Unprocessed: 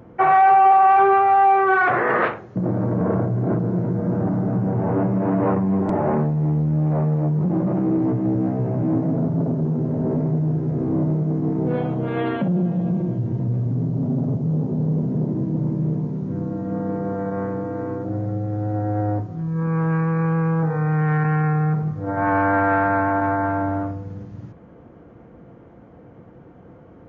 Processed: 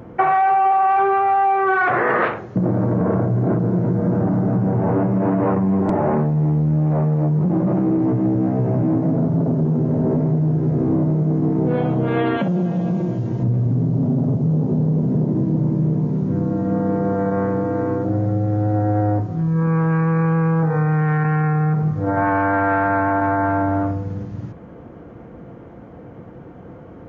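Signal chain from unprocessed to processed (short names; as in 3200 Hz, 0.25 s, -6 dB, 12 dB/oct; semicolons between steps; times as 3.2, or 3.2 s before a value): 12.37–13.43 tilt +2 dB/oct; compressor, threshold -21 dBFS, peak gain reduction 9.5 dB; gain +6.5 dB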